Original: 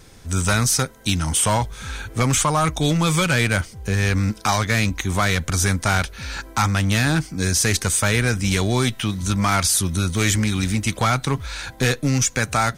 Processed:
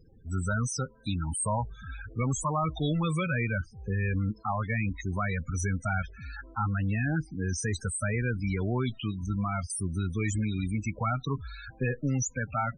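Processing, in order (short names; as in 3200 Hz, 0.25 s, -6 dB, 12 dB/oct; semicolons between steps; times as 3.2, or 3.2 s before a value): loudest bins only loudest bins 16; 9.26–9.7 tape spacing loss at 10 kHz 24 dB; gain -8.5 dB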